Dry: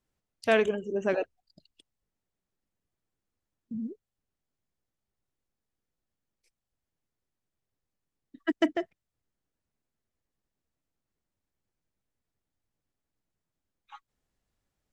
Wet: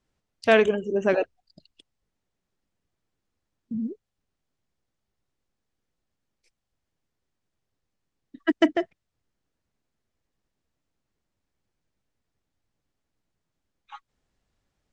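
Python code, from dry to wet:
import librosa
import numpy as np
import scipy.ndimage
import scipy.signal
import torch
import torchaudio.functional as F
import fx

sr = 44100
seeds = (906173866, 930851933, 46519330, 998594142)

y = scipy.signal.sosfilt(scipy.signal.butter(2, 7300.0, 'lowpass', fs=sr, output='sos'), x)
y = y * 10.0 ** (5.5 / 20.0)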